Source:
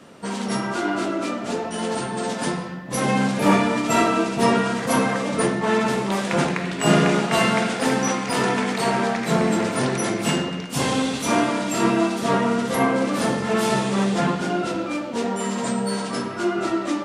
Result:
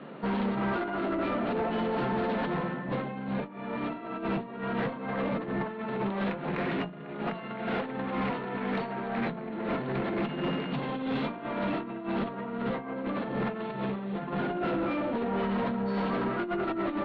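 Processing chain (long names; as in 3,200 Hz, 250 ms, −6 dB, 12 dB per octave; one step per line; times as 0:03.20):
brick-wall band-pass 120–4,500 Hz
compressor whose output falls as the input rises −26 dBFS, ratio −0.5
mains-hum notches 60/120/180/240/300 Hz
tube saturation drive 24 dB, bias 0.2
high-frequency loss of the air 400 metres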